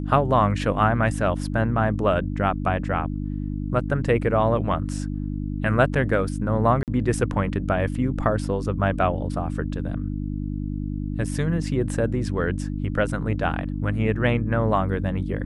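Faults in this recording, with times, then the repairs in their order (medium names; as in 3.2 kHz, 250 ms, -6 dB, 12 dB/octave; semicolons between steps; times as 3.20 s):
hum 50 Hz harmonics 6 -28 dBFS
6.83–6.88 s: dropout 48 ms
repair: de-hum 50 Hz, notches 6; interpolate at 6.83 s, 48 ms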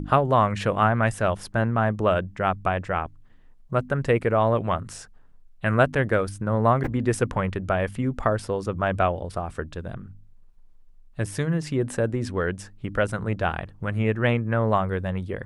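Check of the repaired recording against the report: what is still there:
nothing left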